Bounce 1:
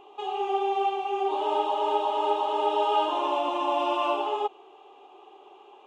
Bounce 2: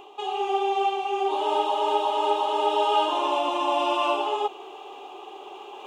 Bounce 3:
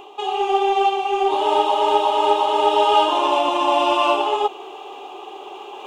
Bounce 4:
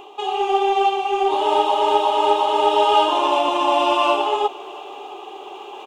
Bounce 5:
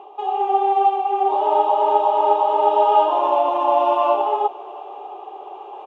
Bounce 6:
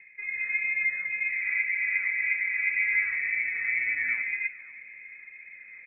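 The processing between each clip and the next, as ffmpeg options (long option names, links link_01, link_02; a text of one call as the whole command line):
ffmpeg -i in.wav -af "highshelf=frequency=3700:gain=9,areverse,acompressor=mode=upward:threshold=-33dB:ratio=2.5,areverse,volume=1.5dB" out.wav
ffmpeg -i in.wav -af "aeval=exprs='0.299*(cos(1*acos(clip(val(0)/0.299,-1,1)))-cos(1*PI/2))+0.00211*(cos(5*acos(clip(val(0)/0.299,-1,1)))-cos(5*PI/2))+0.00668*(cos(7*acos(clip(val(0)/0.299,-1,1)))-cos(7*PI/2))':channel_layout=same,volume=6.5dB" out.wav
ffmpeg -i in.wav -af "aecho=1:1:675:0.0668" out.wav
ffmpeg -i in.wav -af "bandpass=frequency=690:width_type=q:width=1.6:csg=0,volume=3dB" out.wav
ffmpeg -i in.wav -af "flanger=delay=5.2:depth=9.9:regen=88:speed=1.9:shape=triangular,lowpass=frequency=2500:width_type=q:width=0.5098,lowpass=frequency=2500:width_type=q:width=0.6013,lowpass=frequency=2500:width_type=q:width=0.9,lowpass=frequency=2500:width_type=q:width=2.563,afreqshift=-2900,volume=-6.5dB" out.wav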